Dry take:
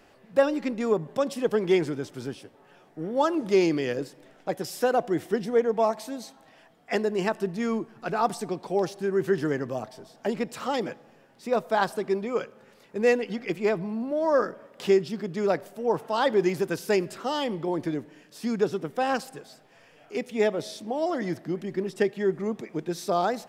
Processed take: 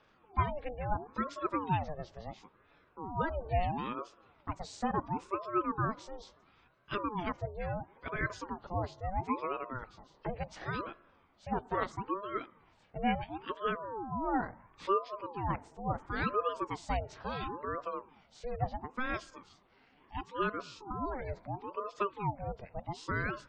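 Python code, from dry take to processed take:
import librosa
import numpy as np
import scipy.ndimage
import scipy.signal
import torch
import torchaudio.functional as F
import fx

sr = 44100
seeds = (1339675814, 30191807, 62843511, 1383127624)

y = fx.freq_compress(x, sr, knee_hz=2800.0, ratio=1.5)
y = fx.spec_gate(y, sr, threshold_db=-30, keep='strong')
y = fx.ring_lfo(y, sr, carrier_hz=550.0, swing_pct=55, hz=0.73)
y = F.gain(torch.from_numpy(y), -6.5).numpy()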